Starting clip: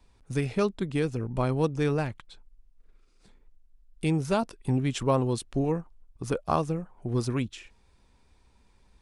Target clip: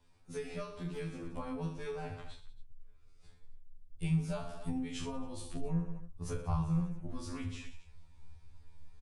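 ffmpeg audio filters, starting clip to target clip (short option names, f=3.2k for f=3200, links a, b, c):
-filter_complex "[0:a]aecho=1:1:30|69|119.7|185.6|271.3:0.631|0.398|0.251|0.158|0.1,acrossover=split=150[a][b];[b]acompressor=threshold=-31dB:ratio=5[c];[a][c]amix=inputs=2:normalize=0,asettb=1/sr,asplit=3[d][e][f];[d]atrim=end=0.744[g];[e]atrim=start=0.74:end=1.22,asetpts=PTS-STARTPTS,afade=t=in:d=0.004:c=qsin,afade=t=out:st=0.476:d=0.004:c=qsin,volume=24dB,asoftclip=hard,volume=-24dB[h];[f]atrim=start=1.216[i];[g][h]acrossfade=d=0.004:c1=hsin:c2=qsin[j];[j][i]acrossfade=d=0.004:c1=qsin:c2=hsin,asubboost=boost=8:cutoff=97,afftfilt=real='re*2*eq(mod(b,4),0)':imag='im*2*eq(mod(b,4),0)':win_size=2048:overlap=0.75,volume=-4dB"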